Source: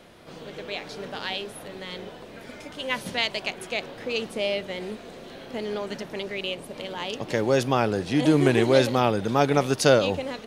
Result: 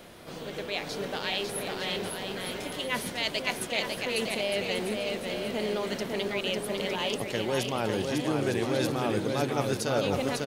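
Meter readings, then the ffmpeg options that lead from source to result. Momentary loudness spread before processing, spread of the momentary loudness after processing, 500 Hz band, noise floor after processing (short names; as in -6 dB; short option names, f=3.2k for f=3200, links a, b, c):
19 LU, 6 LU, -5.0 dB, -40 dBFS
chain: -af "highshelf=f=9.9k:g=11,areverse,acompressor=threshold=-28dB:ratio=6,areverse,aecho=1:1:550|907.5|1140|1291|1389:0.631|0.398|0.251|0.158|0.1,volume=1.5dB"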